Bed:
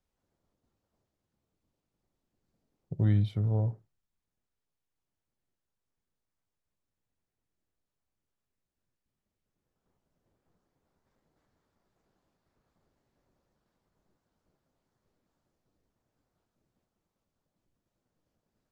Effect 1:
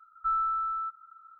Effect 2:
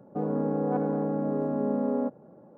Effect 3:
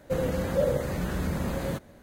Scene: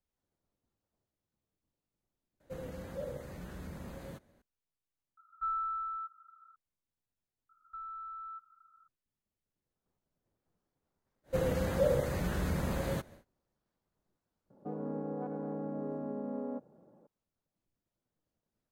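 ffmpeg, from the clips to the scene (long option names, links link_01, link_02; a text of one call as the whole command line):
ffmpeg -i bed.wav -i cue0.wav -i cue1.wav -i cue2.wav -filter_complex "[3:a]asplit=2[link_01][link_02];[1:a]asplit=2[link_03][link_04];[0:a]volume=-7dB[link_05];[link_04]acompressor=threshold=-31dB:ratio=6:attack=3.2:release=140:knee=1:detection=peak[link_06];[link_02]equalizer=frequency=250:width_type=o:width=0.77:gain=-3[link_07];[2:a]alimiter=limit=-19.5dB:level=0:latency=1:release=160[link_08];[link_05]asplit=3[link_09][link_10][link_11];[link_09]atrim=end=2.404[link_12];[link_01]atrim=end=2.02,asetpts=PTS-STARTPTS,volume=-15.5dB[link_13];[link_10]atrim=start=4.416:end=5.174[link_14];[link_03]atrim=end=1.39,asetpts=PTS-STARTPTS,volume=-6.5dB[link_15];[link_11]atrim=start=6.556[link_16];[link_06]atrim=end=1.39,asetpts=PTS-STARTPTS,volume=-11dB,afade=type=in:duration=0.004:curve=hsin,afade=type=out:start_time=1.386:duration=0.004:curve=hsin,adelay=7490[link_17];[link_07]atrim=end=2.02,asetpts=PTS-STARTPTS,volume=-3dB,afade=type=in:duration=0.1,afade=type=out:start_time=1.92:duration=0.1,adelay=11230[link_18];[link_08]atrim=end=2.57,asetpts=PTS-STARTPTS,volume=-9.5dB,afade=type=in:duration=0.004:curve=hsin,afade=type=out:start_time=2.566:duration=0.004:curve=hsin,adelay=14500[link_19];[link_12][link_13]acrossfade=duration=0.004:curve1=hsin:curve2=hsin[link_20];[link_20][link_14]acrossfade=duration=0.004:curve1=hsin:curve2=hsin[link_21];[link_21][link_15]acrossfade=duration=0.004:curve1=hsin:curve2=hsin[link_22];[link_22][link_16]acrossfade=duration=0.004:curve1=hsin:curve2=hsin[link_23];[link_23][link_17][link_18][link_19]amix=inputs=4:normalize=0" out.wav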